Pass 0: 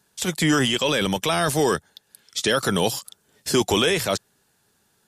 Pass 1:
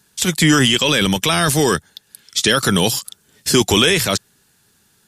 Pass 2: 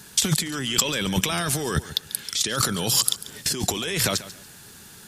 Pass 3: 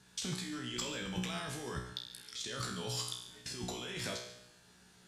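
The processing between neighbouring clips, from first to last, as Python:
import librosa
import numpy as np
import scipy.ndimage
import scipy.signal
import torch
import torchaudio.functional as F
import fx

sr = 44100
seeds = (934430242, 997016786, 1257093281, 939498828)

y1 = fx.peak_eq(x, sr, hz=650.0, db=-7.5, octaves=1.7)
y1 = y1 * librosa.db_to_amplitude(8.5)
y2 = fx.over_compress(y1, sr, threshold_db=-27.0, ratio=-1.0)
y2 = fx.echo_feedback(y2, sr, ms=141, feedback_pct=27, wet_db=-16)
y2 = y2 * librosa.db_to_amplitude(2.0)
y3 = fx.air_absorb(y2, sr, metres=61.0)
y3 = fx.comb_fb(y3, sr, f0_hz=61.0, decay_s=0.73, harmonics='all', damping=0.0, mix_pct=90)
y3 = y3 * librosa.db_to_amplitude(-3.5)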